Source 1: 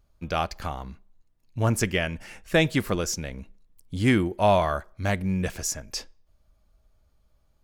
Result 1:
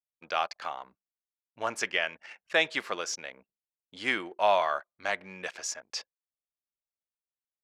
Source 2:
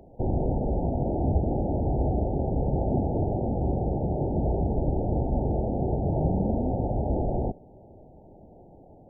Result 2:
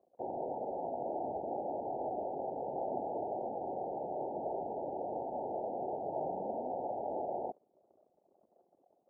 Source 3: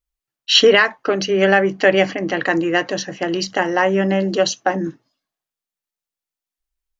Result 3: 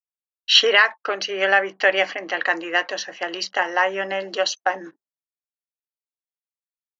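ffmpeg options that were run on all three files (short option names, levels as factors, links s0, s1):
-af "anlmdn=0.1,highpass=720,lowpass=5200"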